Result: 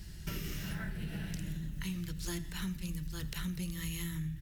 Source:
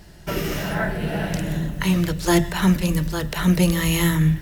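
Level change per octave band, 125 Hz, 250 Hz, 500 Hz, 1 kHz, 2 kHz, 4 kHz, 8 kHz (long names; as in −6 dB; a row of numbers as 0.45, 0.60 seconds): −17.0, −19.0, −25.5, −24.5, −18.5, −15.5, −15.0 decibels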